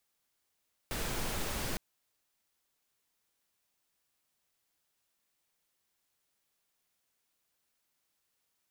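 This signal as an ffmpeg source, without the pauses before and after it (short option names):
-f lavfi -i "anoisesrc=c=pink:a=0.0861:d=0.86:r=44100:seed=1"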